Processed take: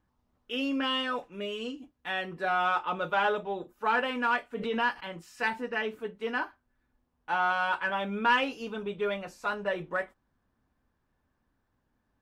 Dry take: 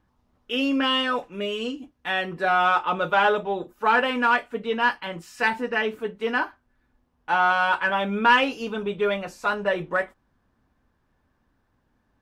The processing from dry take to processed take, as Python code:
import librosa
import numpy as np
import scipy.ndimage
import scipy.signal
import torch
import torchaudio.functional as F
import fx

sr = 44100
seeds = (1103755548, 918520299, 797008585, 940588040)

y = fx.pre_swell(x, sr, db_per_s=62.0, at=(4.53, 5.03))
y = y * librosa.db_to_amplitude(-7.0)